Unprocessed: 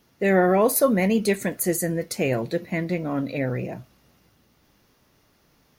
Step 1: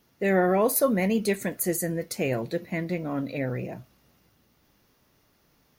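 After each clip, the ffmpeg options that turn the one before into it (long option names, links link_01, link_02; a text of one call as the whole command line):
ffmpeg -i in.wav -af "equalizer=frequency=15000:width=1.3:gain=4,volume=-3.5dB" out.wav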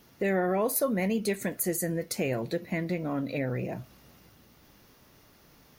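ffmpeg -i in.wav -af "acompressor=threshold=-41dB:ratio=2,volume=7dB" out.wav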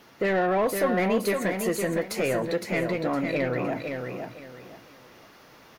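ffmpeg -i in.wav -filter_complex "[0:a]asplit=2[link_01][link_02];[link_02]highpass=frequency=720:poles=1,volume=17dB,asoftclip=type=tanh:threshold=-15dB[link_03];[link_01][link_03]amix=inputs=2:normalize=0,lowpass=frequency=2100:poles=1,volume=-6dB,asplit=2[link_04][link_05];[link_05]aecho=0:1:511|1022|1533|2044:0.531|0.143|0.0387|0.0104[link_06];[link_04][link_06]amix=inputs=2:normalize=0" out.wav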